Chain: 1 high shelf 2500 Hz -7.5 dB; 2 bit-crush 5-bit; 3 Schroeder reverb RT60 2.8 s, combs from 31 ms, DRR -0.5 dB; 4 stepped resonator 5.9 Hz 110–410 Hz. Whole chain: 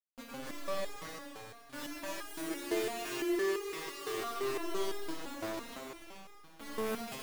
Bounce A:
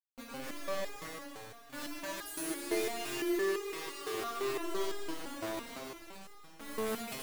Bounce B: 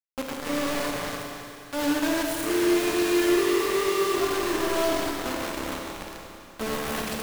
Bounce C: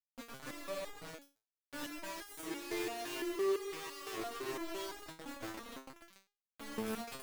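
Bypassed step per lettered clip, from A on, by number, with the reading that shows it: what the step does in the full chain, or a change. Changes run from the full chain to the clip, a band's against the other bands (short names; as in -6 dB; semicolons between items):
1, 8 kHz band +2.0 dB; 4, 250 Hz band +2.0 dB; 3, crest factor change +2.0 dB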